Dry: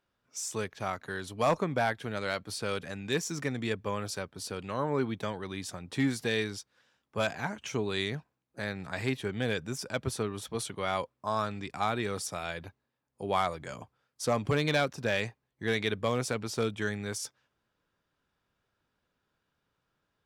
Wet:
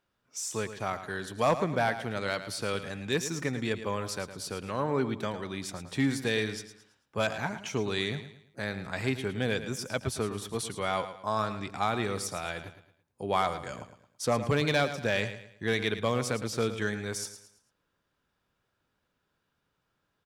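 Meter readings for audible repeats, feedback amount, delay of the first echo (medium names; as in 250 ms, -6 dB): 3, 36%, 110 ms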